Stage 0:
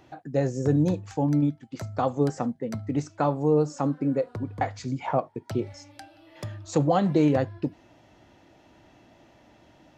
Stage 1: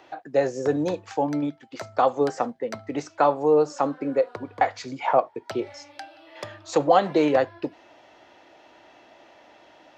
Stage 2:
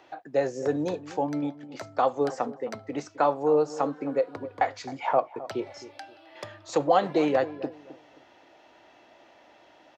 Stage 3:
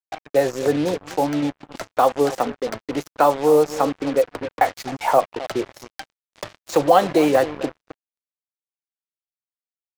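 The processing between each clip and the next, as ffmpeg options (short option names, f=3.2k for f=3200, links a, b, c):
-filter_complex "[0:a]acrossover=split=370 5800:gain=0.1 1 0.251[a][b][c];[a][b][c]amix=inputs=3:normalize=0,volume=7dB"
-filter_complex "[0:a]asplit=2[a][b];[b]adelay=263,lowpass=f=940:p=1,volume=-14.5dB,asplit=2[c][d];[d]adelay=263,lowpass=f=940:p=1,volume=0.31,asplit=2[e][f];[f]adelay=263,lowpass=f=940:p=1,volume=0.31[g];[a][c][e][g]amix=inputs=4:normalize=0,volume=-3.5dB"
-af "acrusher=bits=5:mix=0:aa=0.5,volume=7dB"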